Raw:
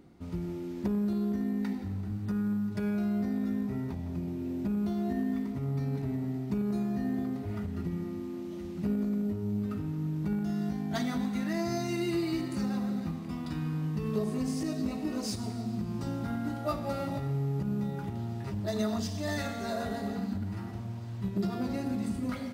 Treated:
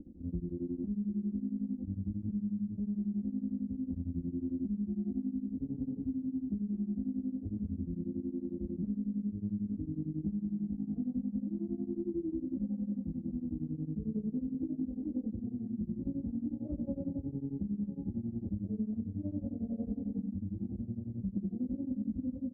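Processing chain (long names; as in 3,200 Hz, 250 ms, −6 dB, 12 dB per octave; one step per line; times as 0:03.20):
inverse Chebyshev low-pass filter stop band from 2,000 Hz, stop band 70 dB
low-shelf EQ 330 Hz +9.5 dB
comb filter 3.8 ms, depth 88%
downward compressor, threshold −31 dBFS, peak gain reduction 13.5 dB
tremolo along a rectified sine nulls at 11 Hz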